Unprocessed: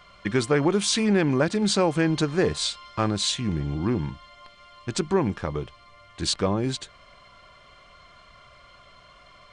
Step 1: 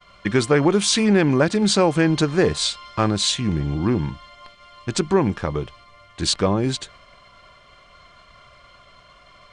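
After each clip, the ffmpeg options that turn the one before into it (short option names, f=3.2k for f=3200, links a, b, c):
-af "agate=range=-33dB:threshold=-48dB:ratio=3:detection=peak,volume=4.5dB"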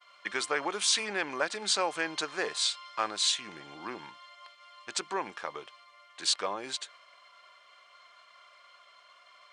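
-af "highpass=790,volume=-6dB"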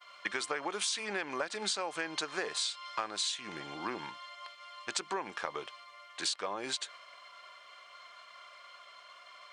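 -af "acompressor=threshold=-35dB:ratio=10,volume=4dB"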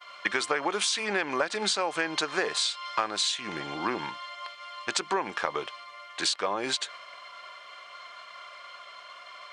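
-af "highshelf=f=6.7k:g=-6,volume=8dB"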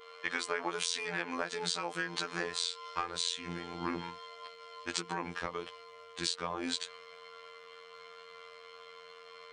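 -af "afftfilt=real='hypot(re,im)*cos(PI*b)':imag='0':win_size=2048:overlap=0.75,asubboost=boost=4.5:cutoff=240,aeval=exprs='val(0)+0.00316*sin(2*PI*460*n/s)':c=same,volume=-3.5dB"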